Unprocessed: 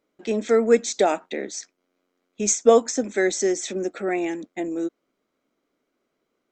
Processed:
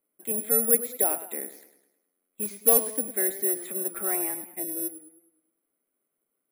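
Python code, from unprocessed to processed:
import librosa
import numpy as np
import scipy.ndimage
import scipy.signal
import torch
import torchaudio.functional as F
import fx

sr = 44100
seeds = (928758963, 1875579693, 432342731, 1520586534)

y = scipy.signal.sosfilt(scipy.signal.butter(4, 3300.0, 'lowpass', fs=sr, output='sos'), x)
y = fx.quant_float(y, sr, bits=2, at=(2.41, 2.98), fade=0.02)
y = fx.peak_eq(y, sr, hz=1100.0, db=12.5, octaves=0.9, at=(3.48, 4.41))
y = (np.kron(y[::4], np.eye(4)[0]) * 4)[:len(y)]
y = fx.echo_warbled(y, sr, ms=104, feedback_pct=47, rate_hz=2.8, cents=91, wet_db=-12.5)
y = F.gain(torch.from_numpy(y), -11.0).numpy()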